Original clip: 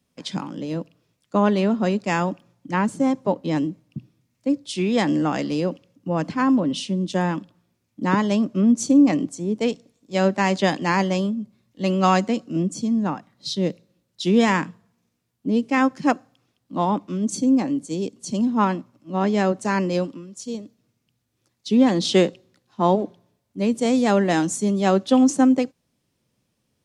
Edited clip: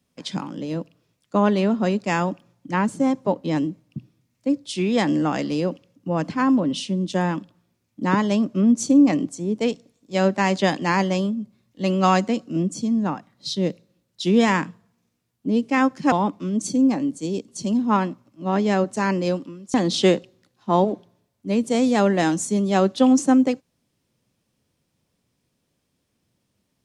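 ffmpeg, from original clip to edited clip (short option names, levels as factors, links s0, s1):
-filter_complex "[0:a]asplit=3[s0][s1][s2];[s0]atrim=end=16.122[s3];[s1]atrim=start=16.798:end=20.422[s4];[s2]atrim=start=21.848[s5];[s3][s4]acrossfade=d=0.004:c1=hsin:c2=hsin[s6];[s6][s5]acrossfade=d=0.004:c1=hsin:c2=hsin"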